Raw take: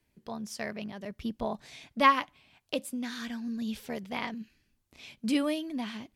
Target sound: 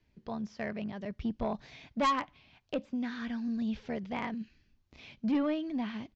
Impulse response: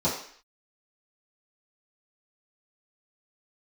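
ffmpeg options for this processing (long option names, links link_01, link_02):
-filter_complex "[0:a]acrossover=split=2600[link_01][link_02];[link_02]acompressor=threshold=-55dB:ratio=4:attack=1:release=60[link_03];[link_01][link_03]amix=inputs=2:normalize=0,lowpass=frequency=5900:width=0.5412,lowpass=frequency=5900:width=1.3066,lowshelf=frequency=140:gain=7,aresample=16000,asoftclip=type=tanh:threshold=-23dB,aresample=44100"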